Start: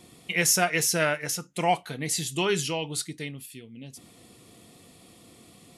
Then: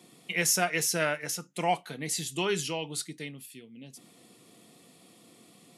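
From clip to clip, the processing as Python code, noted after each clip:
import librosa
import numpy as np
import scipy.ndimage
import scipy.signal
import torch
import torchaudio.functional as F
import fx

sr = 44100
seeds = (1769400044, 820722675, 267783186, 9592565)

y = scipy.signal.sosfilt(scipy.signal.butter(4, 140.0, 'highpass', fs=sr, output='sos'), x)
y = F.gain(torch.from_numpy(y), -3.5).numpy()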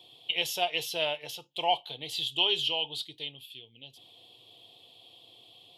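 y = fx.curve_eq(x, sr, hz=(110.0, 190.0, 380.0, 890.0, 1400.0, 2100.0, 3200.0, 6100.0, 9600.0, 14000.0), db=(0, -23, -8, 0, -21, -13, 13, -16, -18, -4))
y = F.gain(torch.from_numpy(y), 2.0).numpy()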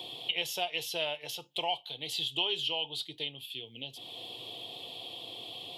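y = fx.band_squash(x, sr, depth_pct=70)
y = F.gain(torch.from_numpy(y), -2.5).numpy()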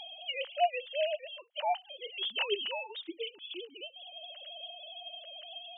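y = fx.sine_speech(x, sr)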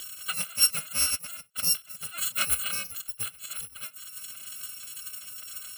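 y = fx.bit_reversed(x, sr, seeds[0], block=128)
y = F.gain(torch.from_numpy(y), 5.5).numpy()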